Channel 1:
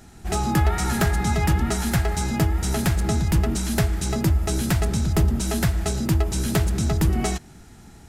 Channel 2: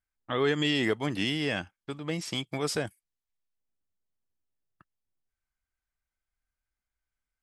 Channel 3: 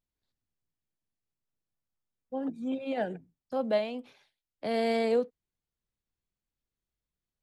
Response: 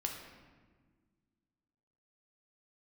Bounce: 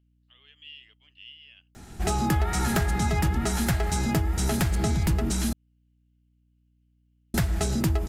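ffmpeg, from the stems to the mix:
-filter_complex "[0:a]adelay=1750,volume=1.19,asplit=3[s0][s1][s2];[s0]atrim=end=5.53,asetpts=PTS-STARTPTS,afade=t=out:st=5.526:d=0.004:c=hsin[s3];[s1]atrim=start=5.53:end=7.34,asetpts=PTS-STARTPTS,volume=0[s4];[s2]atrim=start=7.34,asetpts=PTS-STARTPTS,afade=t=in:d=0.004:c=hsin[s5];[s3][s4][s5]concat=n=3:v=0:a=1[s6];[1:a]acompressor=mode=upward:threshold=0.00355:ratio=2.5,bandpass=f=2900:t=q:w=12:csg=0,volume=0.398[s7];[2:a]highpass=1500,aeval=exprs='val(0)+0.001*(sin(2*PI*60*n/s)+sin(2*PI*2*60*n/s)/2+sin(2*PI*3*60*n/s)/3+sin(2*PI*4*60*n/s)/4+sin(2*PI*5*60*n/s)/5)':c=same,volume=0.596[s8];[s6][s7][s8]amix=inputs=3:normalize=0,acompressor=threshold=0.0708:ratio=2.5"

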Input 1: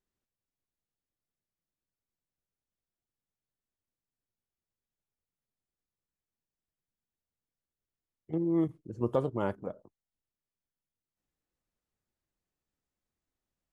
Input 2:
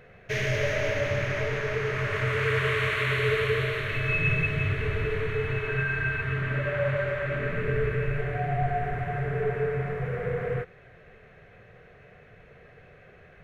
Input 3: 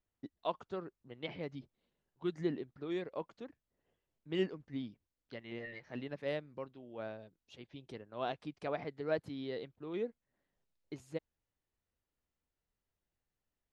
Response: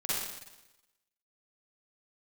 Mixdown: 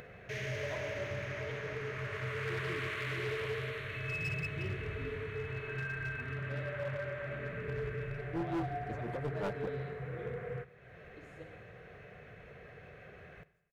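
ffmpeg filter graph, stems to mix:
-filter_complex "[0:a]aeval=exprs='val(0)*pow(10,-21*(0.5-0.5*cos(2*PI*5.6*n/s))/20)':c=same,volume=1.26[s0];[1:a]highpass=40,acompressor=mode=upward:threshold=0.0316:ratio=2.5,volume=0.266,asplit=2[s1][s2];[s2]volume=0.075[s3];[2:a]adelay=250,volume=0.2,asplit=2[s4][s5];[s5]volume=0.422[s6];[3:a]atrim=start_sample=2205[s7];[s3][s6]amix=inputs=2:normalize=0[s8];[s8][s7]afir=irnorm=-1:irlink=0[s9];[s0][s1][s4][s9]amix=inputs=4:normalize=0,asoftclip=type=hard:threshold=0.0266"

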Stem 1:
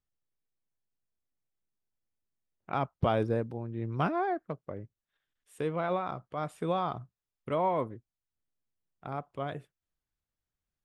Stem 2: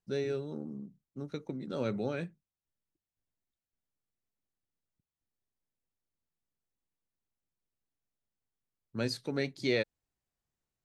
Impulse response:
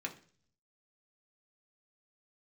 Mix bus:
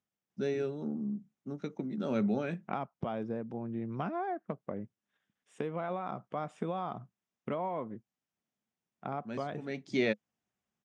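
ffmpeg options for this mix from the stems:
-filter_complex "[0:a]acompressor=threshold=0.0178:ratio=10,volume=1.26,asplit=2[s0][s1];[1:a]bandreject=f=500:w=12,adelay=300,volume=1.06[s2];[s1]apad=whole_len=491485[s3];[s2][s3]sidechaincompress=threshold=0.00447:ratio=8:attack=11:release=341[s4];[s0][s4]amix=inputs=2:normalize=0,highpass=140,equalizer=f=210:t=q:w=4:g=9,equalizer=f=730:t=q:w=4:g=3,equalizer=f=4300:t=q:w=4:g=-10,lowpass=f=6900:w=0.5412,lowpass=f=6900:w=1.3066"

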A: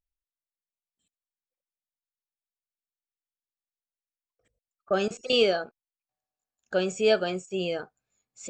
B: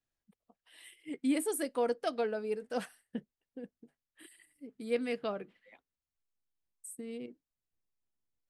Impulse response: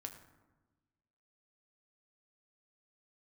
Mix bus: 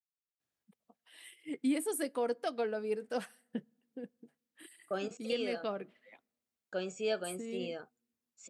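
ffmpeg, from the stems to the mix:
-filter_complex "[0:a]agate=range=0.0224:threshold=0.00251:ratio=3:detection=peak,volume=0.282[s0];[1:a]adelay=400,volume=1.06,asplit=2[s1][s2];[s2]volume=0.0708[s3];[2:a]atrim=start_sample=2205[s4];[s3][s4]afir=irnorm=-1:irlink=0[s5];[s0][s1][s5]amix=inputs=3:normalize=0,highpass=110,alimiter=limit=0.0668:level=0:latency=1:release=377"

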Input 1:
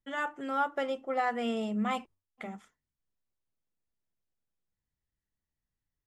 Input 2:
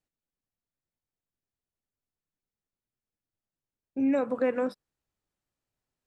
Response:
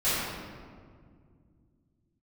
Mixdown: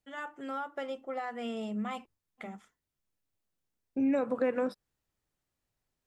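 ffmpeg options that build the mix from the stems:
-filter_complex "[0:a]alimiter=level_in=1.12:limit=0.0631:level=0:latency=1:release=305,volume=0.891,dynaudnorm=f=110:g=5:m=1.88,volume=0.422[s0];[1:a]volume=1.19[s1];[s0][s1]amix=inputs=2:normalize=0,acompressor=threshold=0.0251:ratio=1.5"

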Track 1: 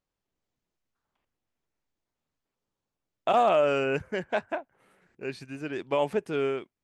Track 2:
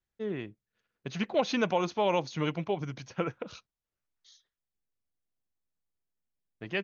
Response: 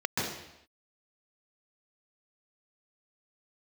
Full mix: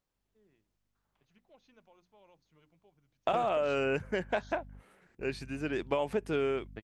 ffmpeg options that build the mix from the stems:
-filter_complex "[0:a]volume=1.06,asplit=2[s0][s1];[1:a]aeval=exprs='val(0)+0.00398*(sin(2*PI*50*n/s)+sin(2*PI*2*50*n/s)/2+sin(2*PI*3*50*n/s)/3+sin(2*PI*4*50*n/s)/4+sin(2*PI*5*50*n/s)/5)':c=same,bandreject=f=60:t=h:w=6,bandreject=f=120:t=h:w=6,bandreject=f=180:t=h:w=6,bandreject=f=240:t=h:w=6,bandreject=f=300:t=h:w=6,adelay=150,volume=1[s2];[s1]apad=whole_len=307875[s3];[s2][s3]sidechaingate=range=0.0178:threshold=0.00158:ratio=16:detection=peak[s4];[s0][s4]amix=inputs=2:normalize=0,acompressor=threshold=0.0501:ratio=12"

